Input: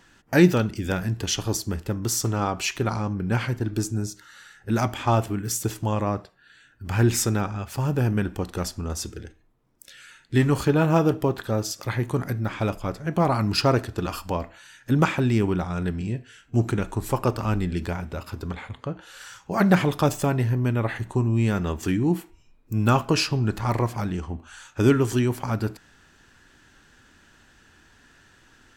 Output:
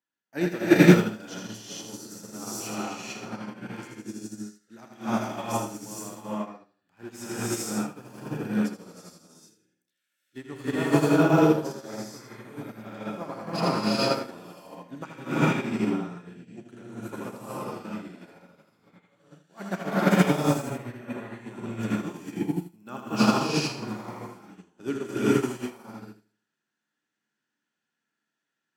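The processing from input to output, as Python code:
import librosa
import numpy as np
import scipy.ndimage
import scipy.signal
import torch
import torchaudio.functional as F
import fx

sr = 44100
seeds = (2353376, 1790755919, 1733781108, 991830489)

p1 = scipy.signal.sosfilt(scipy.signal.butter(4, 170.0, 'highpass', fs=sr, output='sos'), x)
p2 = p1 + fx.echo_feedback(p1, sr, ms=80, feedback_pct=40, wet_db=-4.5, dry=0)
p3 = fx.rev_gated(p2, sr, seeds[0], gate_ms=490, shape='rising', drr_db=-7.5)
p4 = fx.upward_expand(p3, sr, threshold_db=-30.0, expansion=2.5)
y = F.gain(torch.from_numpy(p4), -1.5).numpy()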